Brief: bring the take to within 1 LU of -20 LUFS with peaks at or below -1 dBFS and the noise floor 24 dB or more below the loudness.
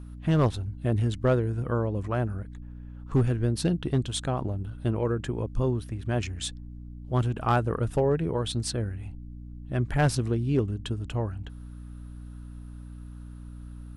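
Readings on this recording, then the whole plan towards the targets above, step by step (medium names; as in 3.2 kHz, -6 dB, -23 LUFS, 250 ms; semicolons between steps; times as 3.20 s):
clipped samples 0.4%; clipping level -15.5 dBFS; hum 60 Hz; highest harmonic 300 Hz; hum level -40 dBFS; loudness -28.0 LUFS; peak level -15.5 dBFS; loudness target -20.0 LUFS
-> clip repair -15.5 dBFS; hum notches 60/120/180/240/300 Hz; trim +8 dB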